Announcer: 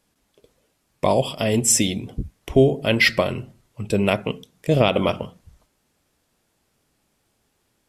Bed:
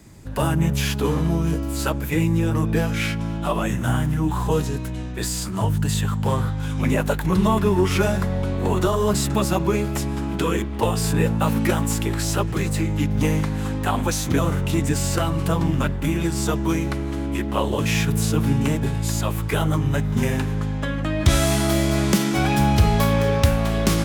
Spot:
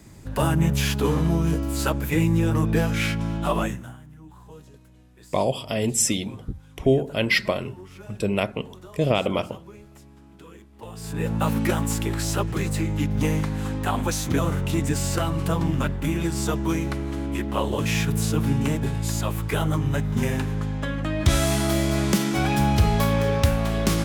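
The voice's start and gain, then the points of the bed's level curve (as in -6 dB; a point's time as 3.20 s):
4.30 s, -4.0 dB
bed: 3.63 s -0.5 dB
3.97 s -24 dB
10.71 s -24 dB
11.36 s -2.5 dB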